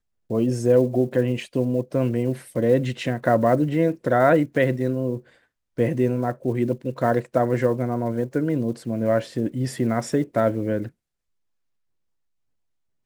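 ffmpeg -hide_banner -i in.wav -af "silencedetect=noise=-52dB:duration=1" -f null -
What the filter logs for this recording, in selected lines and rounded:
silence_start: 10.91
silence_end: 13.06 | silence_duration: 2.15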